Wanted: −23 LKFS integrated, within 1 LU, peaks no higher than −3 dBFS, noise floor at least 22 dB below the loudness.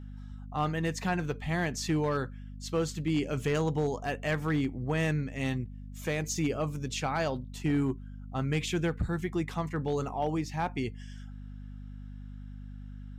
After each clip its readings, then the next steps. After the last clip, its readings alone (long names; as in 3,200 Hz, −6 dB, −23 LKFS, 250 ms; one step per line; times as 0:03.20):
share of clipped samples 0.5%; peaks flattened at −21.5 dBFS; mains hum 50 Hz; hum harmonics up to 250 Hz; level of the hum −41 dBFS; integrated loudness −32.0 LKFS; sample peak −21.5 dBFS; target loudness −23.0 LKFS
→ clipped peaks rebuilt −21.5 dBFS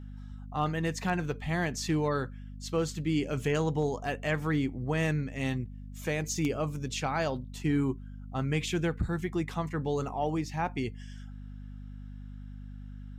share of clipped samples 0.0%; mains hum 50 Hz; hum harmonics up to 250 Hz; level of the hum −41 dBFS
→ hum removal 50 Hz, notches 5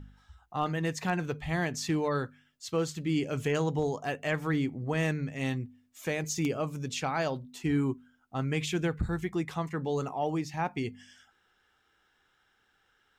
mains hum none found; integrated loudness −32.0 LKFS; sample peak −16.0 dBFS; target loudness −23.0 LKFS
→ level +9 dB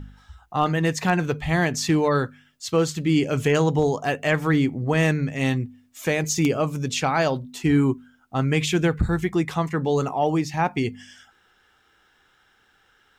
integrated loudness −23.0 LKFS; sample peak −7.0 dBFS; background noise floor −62 dBFS